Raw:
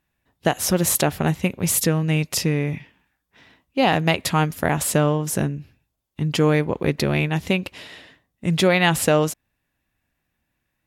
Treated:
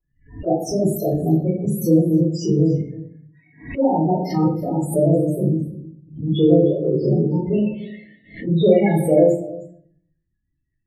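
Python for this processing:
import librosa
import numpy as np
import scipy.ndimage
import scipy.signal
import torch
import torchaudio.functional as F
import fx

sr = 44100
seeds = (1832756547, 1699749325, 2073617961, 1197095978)

p1 = fx.pitch_trill(x, sr, semitones=2.0, every_ms=103)
p2 = fx.dynamic_eq(p1, sr, hz=380.0, q=0.77, threshold_db=-32.0, ratio=4.0, max_db=7)
p3 = fx.hum_notches(p2, sr, base_hz=60, count=4)
p4 = fx.spec_topn(p3, sr, count=8)
p5 = p4 + fx.echo_single(p4, sr, ms=311, db=-18.5, dry=0)
p6 = fx.room_shoebox(p5, sr, seeds[0], volume_m3=63.0, walls='mixed', distance_m=3.2)
p7 = fx.pre_swell(p6, sr, db_per_s=140.0)
y = p7 * 10.0 ** (-14.0 / 20.0)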